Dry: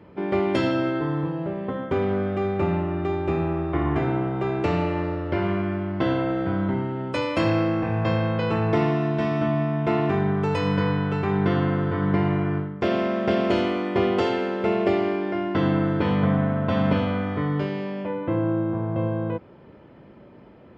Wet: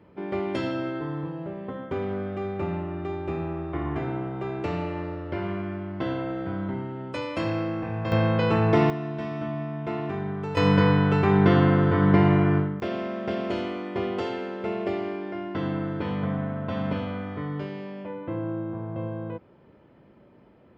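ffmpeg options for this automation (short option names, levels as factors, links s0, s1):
-af "asetnsamples=n=441:p=0,asendcmd='8.12 volume volume 1.5dB;8.9 volume volume -8dB;10.57 volume volume 3.5dB;12.8 volume volume -7dB',volume=0.501"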